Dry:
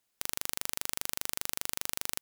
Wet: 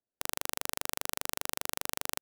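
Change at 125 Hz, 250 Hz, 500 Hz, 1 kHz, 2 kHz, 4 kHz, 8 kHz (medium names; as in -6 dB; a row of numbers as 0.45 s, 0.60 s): -0.5 dB, +2.0 dB, +5.5 dB, +5.5 dB, +1.5 dB, -0.5 dB, -1.5 dB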